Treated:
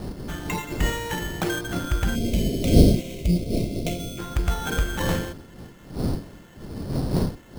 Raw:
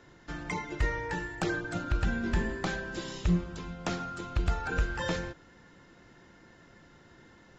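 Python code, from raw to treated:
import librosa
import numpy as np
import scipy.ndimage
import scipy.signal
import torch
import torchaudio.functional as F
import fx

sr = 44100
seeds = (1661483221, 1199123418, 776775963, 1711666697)

y = fx.dmg_wind(x, sr, seeds[0], corner_hz=260.0, level_db=-31.0)
y = fx.sample_hold(y, sr, seeds[1], rate_hz=4800.0, jitter_pct=0)
y = fx.spec_box(y, sr, start_s=2.15, length_s=2.03, low_hz=730.0, high_hz=2000.0, gain_db=-22)
y = F.gain(torch.from_numpy(y), 5.0).numpy()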